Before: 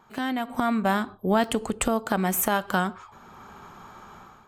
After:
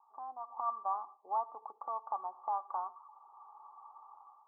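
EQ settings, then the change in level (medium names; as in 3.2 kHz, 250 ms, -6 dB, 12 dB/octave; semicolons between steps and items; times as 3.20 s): high-pass 860 Hz 24 dB/octave; rippled Chebyshev low-pass 1.2 kHz, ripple 9 dB; 0.0 dB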